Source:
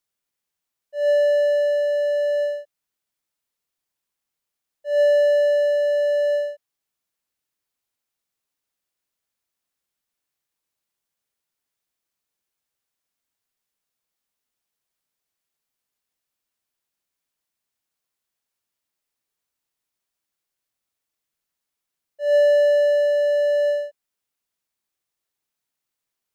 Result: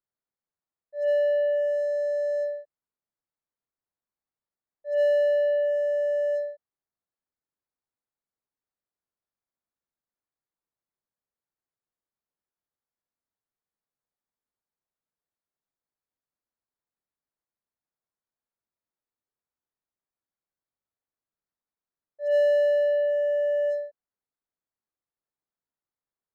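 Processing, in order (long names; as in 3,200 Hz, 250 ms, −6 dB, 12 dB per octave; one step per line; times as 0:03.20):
adaptive Wiener filter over 15 samples
level −5 dB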